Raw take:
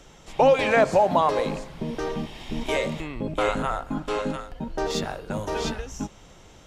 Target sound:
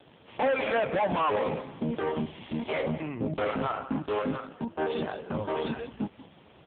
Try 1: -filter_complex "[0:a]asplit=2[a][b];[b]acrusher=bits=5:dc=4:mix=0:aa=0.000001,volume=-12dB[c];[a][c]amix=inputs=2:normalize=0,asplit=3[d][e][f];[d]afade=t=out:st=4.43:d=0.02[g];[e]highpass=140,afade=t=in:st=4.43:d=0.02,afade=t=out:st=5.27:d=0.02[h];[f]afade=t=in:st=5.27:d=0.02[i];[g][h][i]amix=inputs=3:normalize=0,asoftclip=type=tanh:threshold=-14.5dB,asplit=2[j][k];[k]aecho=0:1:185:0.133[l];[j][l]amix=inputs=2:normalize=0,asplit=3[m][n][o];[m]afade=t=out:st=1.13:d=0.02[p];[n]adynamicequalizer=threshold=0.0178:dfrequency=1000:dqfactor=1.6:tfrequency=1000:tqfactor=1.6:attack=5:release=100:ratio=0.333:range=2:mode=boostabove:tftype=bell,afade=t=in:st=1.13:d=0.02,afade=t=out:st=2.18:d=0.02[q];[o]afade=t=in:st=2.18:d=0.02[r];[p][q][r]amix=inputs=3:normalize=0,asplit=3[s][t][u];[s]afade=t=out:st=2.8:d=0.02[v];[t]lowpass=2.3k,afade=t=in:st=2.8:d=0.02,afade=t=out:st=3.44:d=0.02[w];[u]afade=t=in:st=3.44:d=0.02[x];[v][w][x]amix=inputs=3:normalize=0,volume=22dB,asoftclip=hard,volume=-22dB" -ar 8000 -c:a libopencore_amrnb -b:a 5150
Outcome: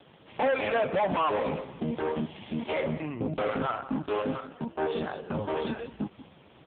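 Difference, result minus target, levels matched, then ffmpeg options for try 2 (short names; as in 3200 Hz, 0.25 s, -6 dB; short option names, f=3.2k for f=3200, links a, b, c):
soft clip: distortion +17 dB
-filter_complex "[0:a]asplit=2[a][b];[b]acrusher=bits=5:dc=4:mix=0:aa=0.000001,volume=-12dB[c];[a][c]amix=inputs=2:normalize=0,asplit=3[d][e][f];[d]afade=t=out:st=4.43:d=0.02[g];[e]highpass=140,afade=t=in:st=4.43:d=0.02,afade=t=out:st=5.27:d=0.02[h];[f]afade=t=in:st=5.27:d=0.02[i];[g][h][i]amix=inputs=3:normalize=0,asoftclip=type=tanh:threshold=-3.5dB,asplit=2[j][k];[k]aecho=0:1:185:0.133[l];[j][l]amix=inputs=2:normalize=0,asplit=3[m][n][o];[m]afade=t=out:st=1.13:d=0.02[p];[n]adynamicequalizer=threshold=0.0178:dfrequency=1000:dqfactor=1.6:tfrequency=1000:tqfactor=1.6:attack=5:release=100:ratio=0.333:range=2:mode=boostabove:tftype=bell,afade=t=in:st=1.13:d=0.02,afade=t=out:st=2.18:d=0.02[q];[o]afade=t=in:st=2.18:d=0.02[r];[p][q][r]amix=inputs=3:normalize=0,asplit=3[s][t][u];[s]afade=t=out:st=2.8:d=0.02[v];[t]lowpass=2.3k,afade=t=in:st=2.8:d=0.02,afade=t=out:st=3.44:d=0.02[w];[u]afade=t=in:st=3.44:d=0.02[x];[v][w][x]amix=inputs=3:normalize=0,volume=22dB,asoftclip=hard,volume=-22dB" -ar 8000 -c:a libopencore_amrnb -b:a 5150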